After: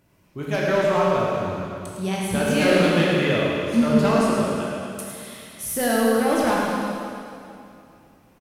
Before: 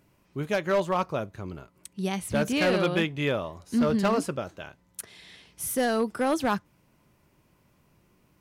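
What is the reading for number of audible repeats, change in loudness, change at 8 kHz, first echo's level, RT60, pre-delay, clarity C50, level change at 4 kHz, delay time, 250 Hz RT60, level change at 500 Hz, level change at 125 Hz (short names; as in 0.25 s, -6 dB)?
1, +6.0 dB, +6.0 dB, -6.5 dB, 2.6 s, 6 ms, -2.5 dB, +6.0 dB, 0.107 s, 2.7 s, +7.0 dB, +7.0 dB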